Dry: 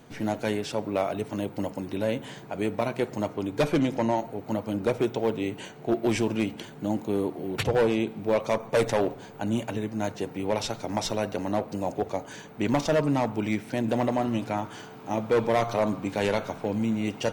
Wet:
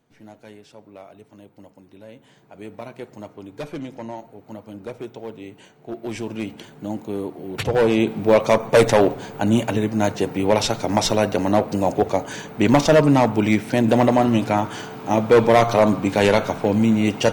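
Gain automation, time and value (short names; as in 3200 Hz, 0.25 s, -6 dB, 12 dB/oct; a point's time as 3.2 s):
2.08 s -15.5 dB
2.74 s -8 dB
5.81 s -8 dB
6.5 s -0.5 dB
7.45 s -0.5 dB
8.09 s +9.5 dB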